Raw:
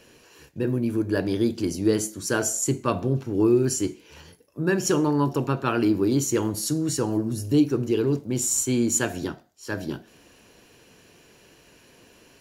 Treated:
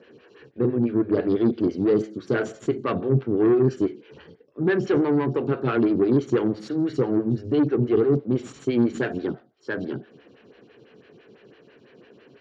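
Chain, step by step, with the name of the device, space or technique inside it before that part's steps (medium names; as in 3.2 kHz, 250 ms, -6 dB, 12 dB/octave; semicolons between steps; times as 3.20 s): vibe pedal into a guitar amplifier (lamp-driven phase shifter 6 Hz; valve stage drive 22 dB, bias 0.35; cabinet simulation 97–3700 Hz, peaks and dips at 130 Hz +6 dB, 220 Hz +3 dB, 420 Hz +5 dB, 650 Hz -4 dB, 950 Hz -8 dB, 2.6 kHz -4 dB); trim +6 dB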